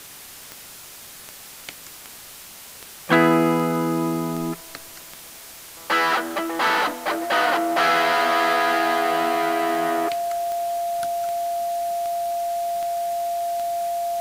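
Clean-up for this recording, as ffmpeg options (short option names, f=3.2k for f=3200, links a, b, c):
-af "adeclick=t=4,bandreject=f=690:w=30,afwtdn=0.01"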